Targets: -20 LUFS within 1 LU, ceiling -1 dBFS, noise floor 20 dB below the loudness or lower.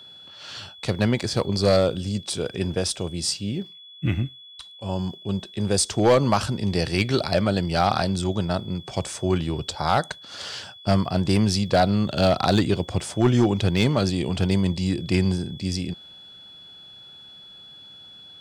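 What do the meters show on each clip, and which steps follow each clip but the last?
clipped samples 0.3%; clipping level -10.5 dBFS; steady tone 3.4 kHz; tone level -43 dBFS; loudness -23.5 LUFS; peak level -10.5 dBFS; loudness target -20.0 LUFS
-> clip repair -10.5 dBFS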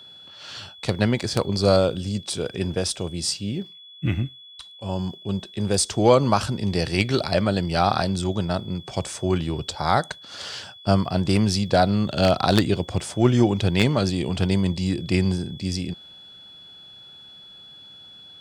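clipped samples 0.0%; steady tone 3.4 kHz; tone level -43 dBFS
-> band-stop 3.4 kHz, Q 30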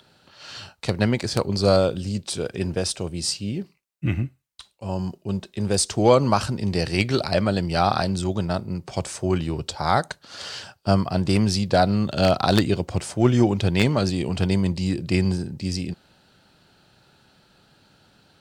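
steady tone not found; loudness -23.0 LUFS; peak level -1.5 dBFS; loudness target -20.0 LUFS
-> trim +3 dB; peak limiter -1 dBFS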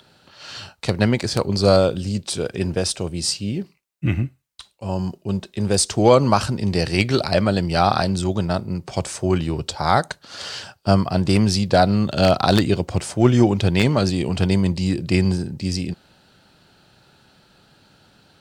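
loudness -20.0 LUFS; peak level -1.0 dBFS; noise floor -60 dBFS

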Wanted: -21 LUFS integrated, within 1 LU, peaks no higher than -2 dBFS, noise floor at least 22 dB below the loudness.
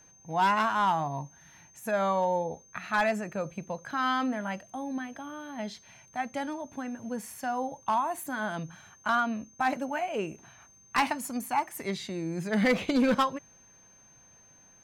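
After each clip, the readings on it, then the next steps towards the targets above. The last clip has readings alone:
clipped samples 0.5%; clipping level -19.0 dBFS; steady tone 6.3 kHz; tone level -56 dBFS; loudness -30.5 LUFS; peak level -19.0 dBFS; loudness target -21.0 LUFS
-> clip repair -19 dBFS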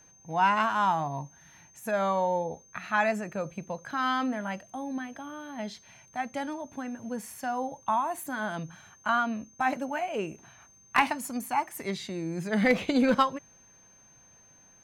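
clipped samples 0.0%; steady tone 6.3 kHz; tone level -56 dBFS
-> band-stop 6.3 kHz, Q 30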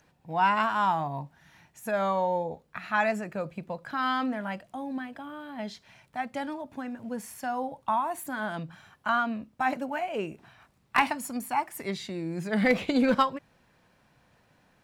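steady tone not found; loudness -30.0 LUFS; peak level -10.0 dBFS; loudness target -21.0 LUFS
-> trim +9 dB; peak limiter -2 dBFS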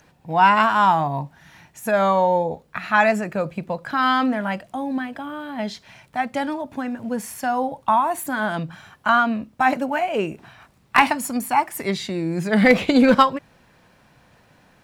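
loudness -21.0 LUFS; peak level -2.0 dBFS; noise floor -57 dBFS

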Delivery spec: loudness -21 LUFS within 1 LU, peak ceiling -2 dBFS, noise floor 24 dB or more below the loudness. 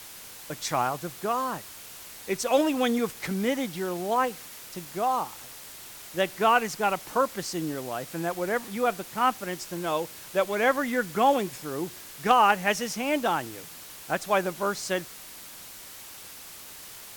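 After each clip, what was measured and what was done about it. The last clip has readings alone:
noise floor -45 dBFS; noise floor target -51 dBFS; loudness -27.0 LUFS; peak level -4.5 dBFS; loudness target -21.0 LUFS
-> noise reduction 6 dB, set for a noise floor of -45 dBFS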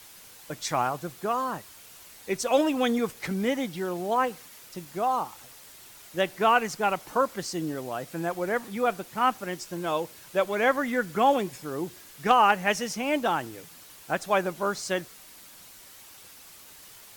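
noise floor -50 dBFS; noise floor target -52 dBFS
-> noise reduction 6 dB, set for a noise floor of -50 dBFS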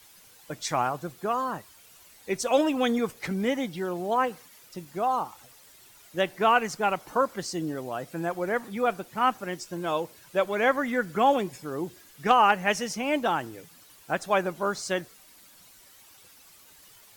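noise floor -54 dBFS; loudness -27.5 LUFS; peak level -5.0 dBFS; loudness target -21.0 LUFS
-> trim +6.5 dB; peak limiter -2 dBFS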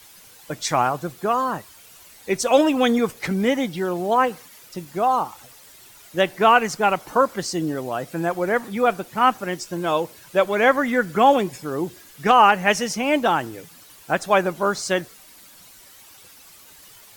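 loudness -21.0 LUFS; peak level -2.0 dBFS; noise floor -48 dBFS

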